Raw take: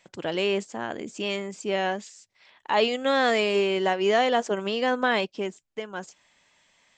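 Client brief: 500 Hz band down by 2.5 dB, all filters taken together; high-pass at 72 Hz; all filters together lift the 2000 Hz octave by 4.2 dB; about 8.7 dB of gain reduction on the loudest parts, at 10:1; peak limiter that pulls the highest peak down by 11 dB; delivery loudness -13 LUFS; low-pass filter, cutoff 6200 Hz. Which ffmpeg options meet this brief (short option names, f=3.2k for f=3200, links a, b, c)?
-af "highpass=72,lowpass=6.2k,equalizer=f=500:t=o:g=-3.5,equalizer=f=2k:t=o:g=5.5,acompressor=threshold=-26dB:ratio=10,volume=23dB,alimiter=limit=-2.5dB:level=0:latency=1"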